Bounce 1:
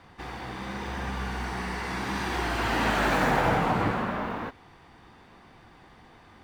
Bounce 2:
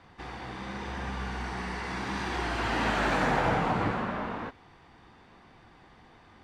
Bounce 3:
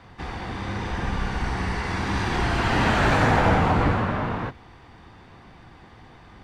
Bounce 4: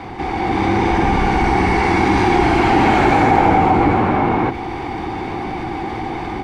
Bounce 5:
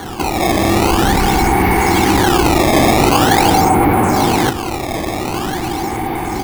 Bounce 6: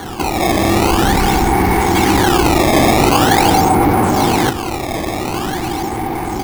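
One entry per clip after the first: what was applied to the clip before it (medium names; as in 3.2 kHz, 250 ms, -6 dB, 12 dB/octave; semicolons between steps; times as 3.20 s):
low-pass 8.1 kHz 12 dB/octave; trim -2.5 dB
octave divider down 1 oct, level +2 dB; trim +6 dB
level rider gain up to 12.5 dB; small resonant body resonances 340/780/2200 Hz, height 14 dB, ringing for 25 ms; level flattener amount 50%; trim -8.5 dB
in parallel at +2.5 dB: peak limiter -10.5 dBFS, peak gain reduction 8.5 dB; on the sum: decimation with a swept rate 17×, swing 160% 0.45 Hz; trim -3 dB
median filter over 15 samples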